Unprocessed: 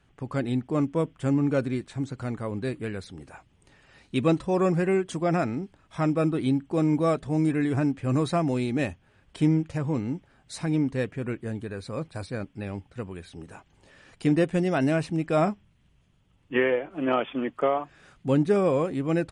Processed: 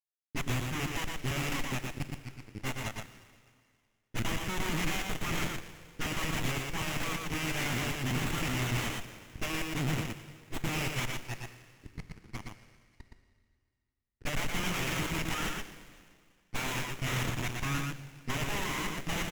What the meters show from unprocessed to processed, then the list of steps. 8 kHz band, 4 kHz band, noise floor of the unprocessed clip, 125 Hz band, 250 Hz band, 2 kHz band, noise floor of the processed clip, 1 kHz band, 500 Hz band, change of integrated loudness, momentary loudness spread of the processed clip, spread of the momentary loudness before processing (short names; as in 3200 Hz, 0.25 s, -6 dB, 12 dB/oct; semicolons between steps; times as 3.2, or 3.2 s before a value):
+8.5 dB, +6.5 dB, -64 dBFS, -7.0 dB, -13.0 dB, +1.0 dB, -79 dBFS, -6.0 dB, -16.0 dB, -7.5 dB, 13 LU, 13 LU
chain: rattling part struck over -29 dBFS, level -27 dBFS; HPF 650 Hz 12 dB/oct; spectral noise reduction 22 dB; high shelf 4900 Hz +9 dB; fixed phaser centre 2700 Hz, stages 4; full-wave rectifier; companded quantiser 2-bit; low-pass opened by the level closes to 1000 Hz, open at -29 dBFS; Butterworth band-stop 900 Hz, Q 0.52; echo 0.118 s -3.5 dB; plate-style reverb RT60 2 s, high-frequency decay 1×, DRR 8 dB; running maximum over 9 samples